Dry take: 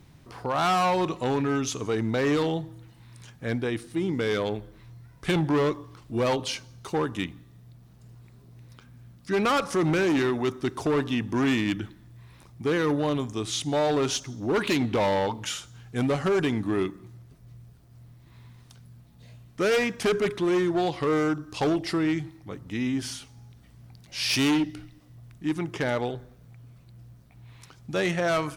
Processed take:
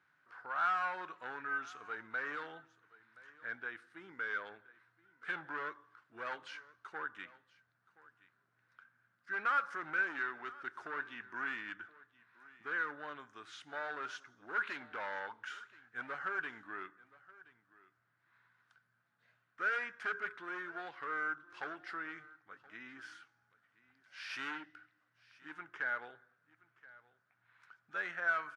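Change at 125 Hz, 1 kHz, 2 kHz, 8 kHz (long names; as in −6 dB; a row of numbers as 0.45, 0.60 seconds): −35.0 dB, −10.0 dB, −3.5 dB, below −25 dB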